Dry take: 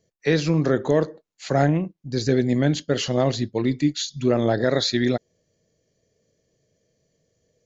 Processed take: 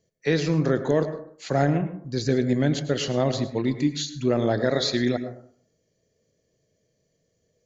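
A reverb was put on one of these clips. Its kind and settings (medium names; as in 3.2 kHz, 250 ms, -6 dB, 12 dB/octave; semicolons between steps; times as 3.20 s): plate-style reverb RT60 0.57 s, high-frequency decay 0.3×, pre-delay 90 ms, DRR 10 dB; trim -2.5 dB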